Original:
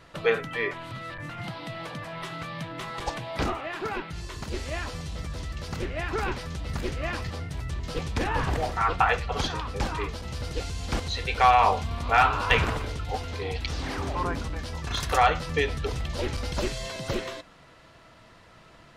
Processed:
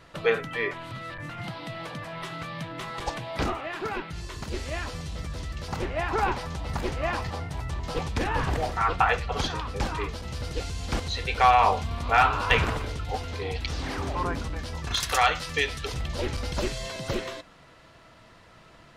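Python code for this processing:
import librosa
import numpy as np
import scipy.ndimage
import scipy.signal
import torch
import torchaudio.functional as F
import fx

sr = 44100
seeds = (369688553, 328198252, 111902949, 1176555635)

y = fx.peak_eq(x, sr, hz=860.0, db=9.0, octaves=0.9, at=(5.68, 8.09))
y = fx.tilt_shelf(y, sr, db=-6.0, hz=1300.0, at=(14.94, 15.94))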